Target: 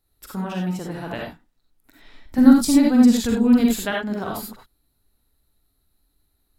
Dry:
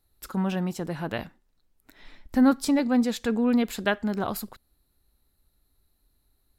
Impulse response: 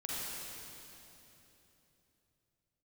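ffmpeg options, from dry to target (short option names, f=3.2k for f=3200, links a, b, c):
-filter_complex "[0:a]asettb=1/sr,asplit=3[a][b][c];[a]atrim=end=2.384[d];[b]atrim=start=2.38:end=3.78,asetpts=PTS-STARTPTS,afade=t=in:d=0.004:c=qsin,afade=t=out:st=1.396:d=0.004:c=qsin,bass=f=250:g=12,treble=f=4k:g=9[e];[c]atrim=start=3.776[f];[d][e]acrossfade=d=0.004:c1=hsin:c2=qsin[g];[g][f]acrossfade=d=0.004:c1=qsin:c2=hsin[h];[1:a]atrim=start_sample=2205,atrim=end_sample=4410[i];[h][i]afir=irnorm=-1:irlink=0,volume=3dB"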